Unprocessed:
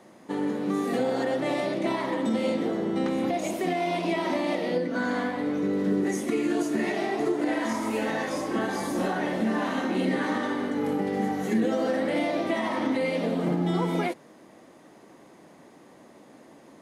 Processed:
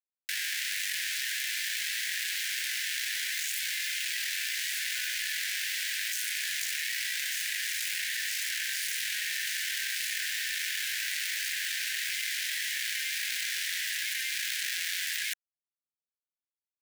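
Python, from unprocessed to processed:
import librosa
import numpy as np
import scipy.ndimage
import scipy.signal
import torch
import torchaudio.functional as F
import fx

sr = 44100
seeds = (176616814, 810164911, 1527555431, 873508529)

p1 = np.maximum(x, 0.0)
p2 = fx.quant_companded(p1, sr, bits=2)
p3 = scipy.signal.sosfilt(scipy.signal.butter(16, 1600.0, 'highpass', fs=sr, output='sos'), p2)
p4 = p3 + fx.echo_single(p3, sr, ms=1197, db=-5.5, dry=0)
y = fx.env_flatten(p4, sr, amount_pct=100)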